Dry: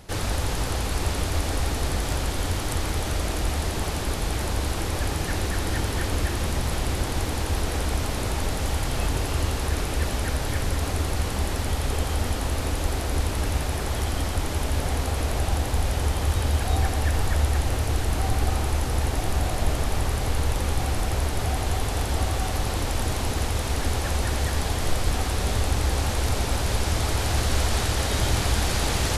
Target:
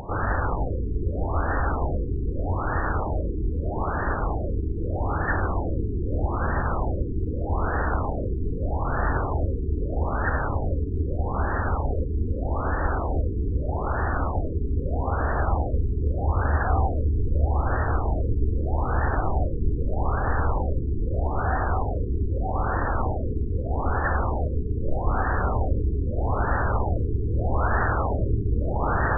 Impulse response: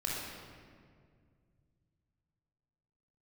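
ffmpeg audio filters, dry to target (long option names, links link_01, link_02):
-filter_complex "[0:a]crystalizer=i=9.5:c=0,acompressor=mode=upward:threshold=-19dB:ratio=2.5,highshelf=frequency=2300:width_type=q:width=1.5:gain=-13.5,asplit=2[link_01][link_02];[1:a]atrim=start_sample=2205,afade=type=out:start_time=0.19:duration=0.01,atrim=end_sample=8820,adelay=21[link_03];[link_02][link_03]afir=irnorm=-1:irlink=0,volume=-19.5dB[link_04];[link_01][link_04]amix=inputs=2:normalize=0,afftfilt=real='re*lt(b*sr/1024,440*pow(1900/440,0.5+0.5*sin(2*PI*0.8*pts/sr)))':imag='im*lt(b*sr/1024,440*pow(1900/440,0.5+0.5*sin(2*PI*0.8*pts/sr)))':win_size=1024:overlap=0.75"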